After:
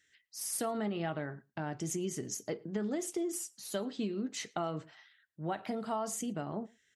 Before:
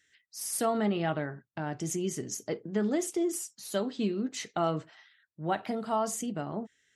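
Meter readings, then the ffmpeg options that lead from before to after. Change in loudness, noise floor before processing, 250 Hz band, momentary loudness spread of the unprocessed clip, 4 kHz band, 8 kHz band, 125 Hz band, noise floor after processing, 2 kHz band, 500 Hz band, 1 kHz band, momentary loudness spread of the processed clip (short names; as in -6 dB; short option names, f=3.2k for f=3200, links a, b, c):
-5.0 dB, -76 dBFS, -5.0 dB, 9 LU, -3.5 dB, -2.5 dB, -4.5 dB, -73 dBFS, -5.0 dB, -5.5 dB, -6.0 dB, 6 LU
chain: -filter_complex "[0:a]acompressor=threshold=-29dB:ratio=6,asplit=2[a][b];[b]adelay=110.8,volume=-27dB,highshelf=f=4k:g=-2.49[c];[a][c]amix=inputs=2:normalize=0,volume=-2dB"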